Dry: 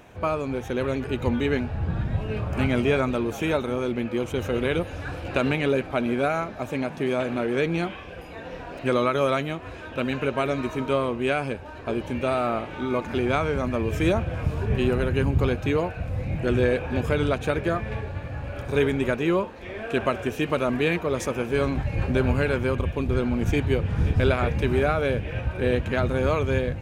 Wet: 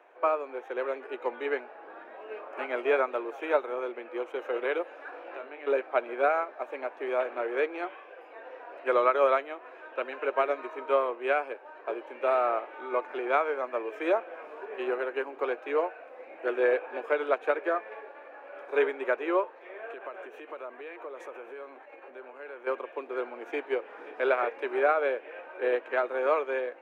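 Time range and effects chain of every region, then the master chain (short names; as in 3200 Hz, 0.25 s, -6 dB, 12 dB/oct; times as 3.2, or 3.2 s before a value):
5.1–5.67 compressor 16:1, threshold -28 dBFS + air absorption 53 m + flutter echo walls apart 3.5 m, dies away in 0.2 s
19.69–22.67 bell 5000 Hz -6.5 dB 0.22 oct + compressor 12:1, threshold -28 dBFS
whole clip: steep high-pass 300 Hz 36 dB/oct; three-band isolator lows -22 dB, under 380 Hz, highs -21 dB, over 2300 Hz; upward expander 1.5:1, over -36 dBFS; gain +2.5 dB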